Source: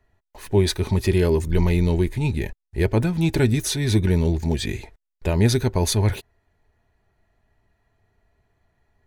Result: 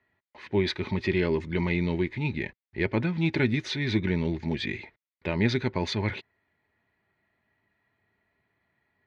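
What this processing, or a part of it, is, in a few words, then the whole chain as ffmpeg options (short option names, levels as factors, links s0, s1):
kitchen radio: -af "highpass=160,equalizer=f=440:t=q:w=4:g=-5,equalizer=f=710:t=q:w=4:g=-6,equalizer=f=2100:t=q:w=4:g=8,lowpass=f=4200:w=0.5412,lowpass=f=4200:w=1.3066,volume=0.708"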